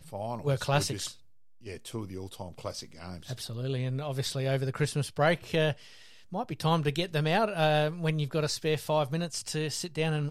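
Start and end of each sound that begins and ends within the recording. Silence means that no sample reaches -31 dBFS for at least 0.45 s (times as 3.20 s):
1.69–5.72 s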